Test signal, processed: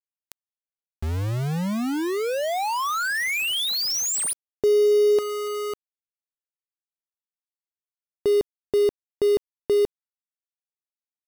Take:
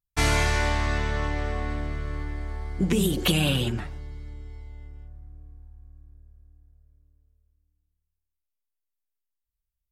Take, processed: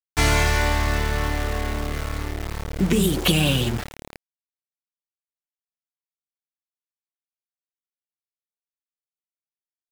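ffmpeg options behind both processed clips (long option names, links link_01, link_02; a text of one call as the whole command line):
ffmpeg -i in.wav -af "aeval=exprs='val(0)*gte(abs(val(0)),0.0299)':channel_layout=same,volume=3.5dB" out.wav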